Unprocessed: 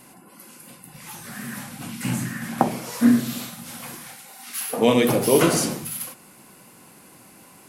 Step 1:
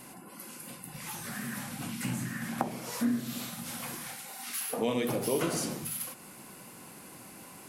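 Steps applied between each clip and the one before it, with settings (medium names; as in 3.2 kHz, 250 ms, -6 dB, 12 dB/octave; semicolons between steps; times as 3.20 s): compression 2:1, threshold -37 dBFS, peak gain reduction 14 dB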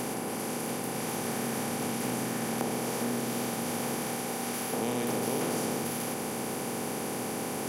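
spectral levelling over time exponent 0.2; trim -8 dB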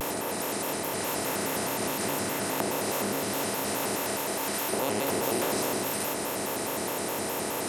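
peaking EQ 180 Hz -11 dB 1.1 oct; vibrato with a chosen wave square 4.8 Hz, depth 250 cents; trim +4.5 dB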